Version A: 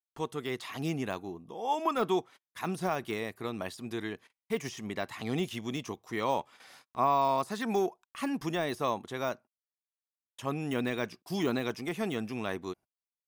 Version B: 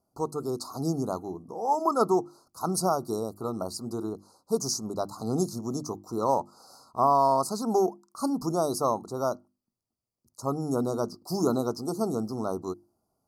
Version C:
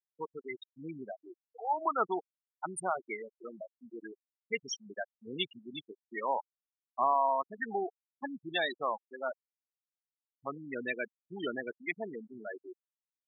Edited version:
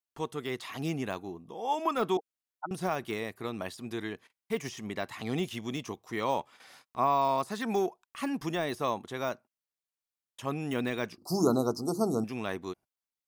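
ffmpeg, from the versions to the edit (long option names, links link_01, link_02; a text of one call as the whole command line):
ffmpeg -i take0.wav -i take1.wav -i take2.wav -filter_complex "[0:a]asplit=3[link_01][link_02][link_03];[link_01]atrim=end=2.172[link_04];[2:a]atrim=start=2.168:end=2.712[link_05];[link_02]atrim=start=2.708:end=11.182[link_06];[1:a]atrim=start=11.178:end=12.242[link_07];[link_03]atrim=start=12.238[link_08];[link_04][link_05]acrossfade=duration=0.004:curve1=hsin:curve2=hsin[link_09];[link_09][link_06]acrossfade=duration=0.004:curve1=hsin:curve2=hsin[link_10];[link_10][link_07]acrossfade=duration=0.004:curve1=hsin:curve2=hsin[link_11];[link_11][link_08]acrossfade=duration=0.004:curve1=hsin:curve2=hsin" out.wav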